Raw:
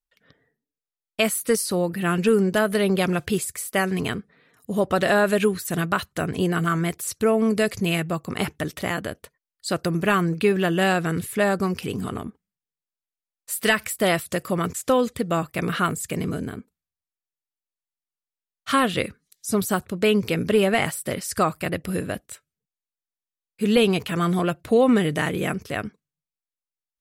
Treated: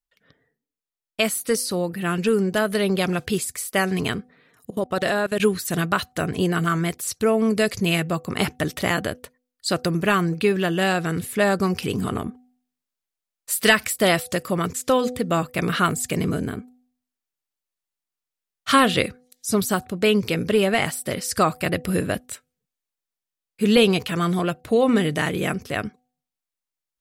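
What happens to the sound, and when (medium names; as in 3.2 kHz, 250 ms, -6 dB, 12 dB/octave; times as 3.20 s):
4.70–5.40 s: level held to a coarse grid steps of 23 dB
whole clip: dynamic bell 4.7 kHz, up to +4 dB, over -41 dBFS, Q 1.1; gain riding 2 s; de-hum 249.4 Hz, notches 3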